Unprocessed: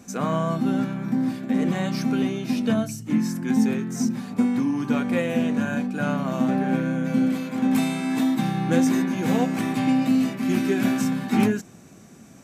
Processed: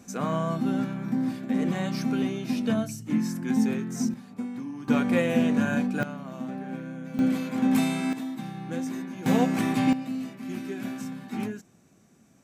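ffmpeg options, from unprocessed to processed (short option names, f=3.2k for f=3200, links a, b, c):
-af "asetnsamples=n=441:p=0,asendcmd='4.14 volume volume -12.5dB;4.88 volume volume 0dB;6.03 volume volume -12.5dB;7.19 volume volume -1.5dB;8.13 volume volume -12dB;9.26 volume volume -0.5dB;9.93 volume volume -12dB',volume=-3.5dB"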